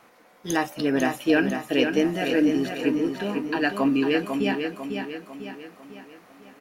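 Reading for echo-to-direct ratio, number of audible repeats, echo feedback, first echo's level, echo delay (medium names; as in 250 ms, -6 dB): -5.0 dB, 5, 47%, -6.0 dB, 498 ms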